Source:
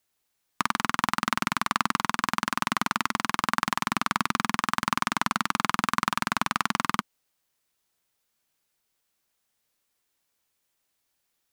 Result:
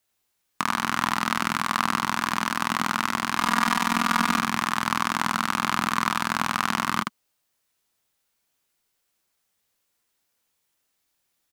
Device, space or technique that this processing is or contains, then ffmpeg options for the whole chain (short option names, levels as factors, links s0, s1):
slapback doubling: -filter_complex "[0:a]asettb=1/sr,asplit=3[s0][s1][s2];[s0]atrim=end=3.384[s3];[s1]atrim=start=3.38:end=4.39,asetpts=PTS-STARTPTS,afade=t=in:d=0.004:c=qsin,afade=t=out:st=1.006:d=0.004:c=qsin,aecho=1:1:4.2:0.87,atrim=end_sample=44541[s4];[s2]atrim=start=4.386[s5];[s3][s4]acrossfade=d=0.004:c1=hsin:c2=qsin[s6];[s6][s5]acrossfade=d=0.004:c1=qsin:c2=hsin,asplit=3[s7][s8][s9];[s8]adelay=22,volume=0.422[s10];[s9]adelay=79,volume=0.631[s11];[s7][s10][s11]amix=inputs=3:normalize=0"